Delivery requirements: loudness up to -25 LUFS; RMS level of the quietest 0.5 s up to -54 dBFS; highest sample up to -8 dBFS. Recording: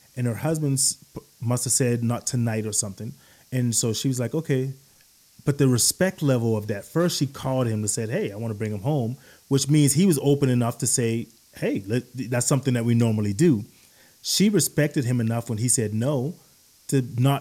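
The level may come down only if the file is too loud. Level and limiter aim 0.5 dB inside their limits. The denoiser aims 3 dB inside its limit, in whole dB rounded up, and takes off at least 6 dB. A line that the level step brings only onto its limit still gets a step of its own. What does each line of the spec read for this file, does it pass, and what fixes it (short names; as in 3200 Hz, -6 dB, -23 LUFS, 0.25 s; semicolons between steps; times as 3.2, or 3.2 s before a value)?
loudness -23.5 LUFS: fail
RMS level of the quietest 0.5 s -57 dBFS: OK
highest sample -8.5 dBFS: OK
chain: gain -2 dB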